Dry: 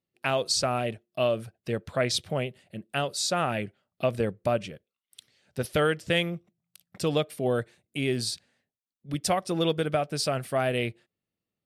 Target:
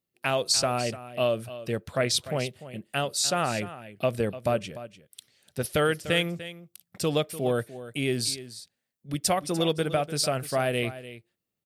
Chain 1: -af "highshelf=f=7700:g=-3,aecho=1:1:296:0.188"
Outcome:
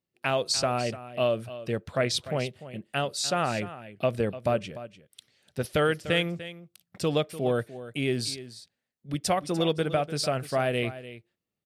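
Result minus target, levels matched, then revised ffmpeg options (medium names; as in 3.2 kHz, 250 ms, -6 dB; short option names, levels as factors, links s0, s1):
8 kHz band -4.5 dB
-af "highshelf=f=7700:g=8.5,aecho=1:1:296:0.188"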